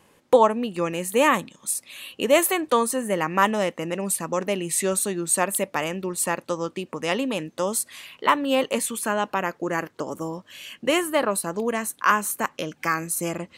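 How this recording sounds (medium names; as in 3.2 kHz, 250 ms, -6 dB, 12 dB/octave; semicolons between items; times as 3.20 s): noise floor -60 dBFS; spectral tilt -3.5 dB/octave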